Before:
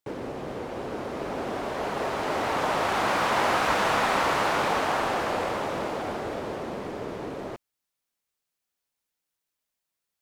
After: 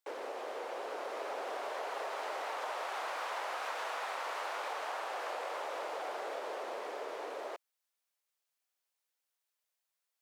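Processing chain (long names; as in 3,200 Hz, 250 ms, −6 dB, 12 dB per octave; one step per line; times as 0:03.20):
high-pass filter 470 Hz 24 dB per octave
downward compressor 10 to 1, threshold −33 dBFS, peak gain reduction 13 dB
level −2.5 dB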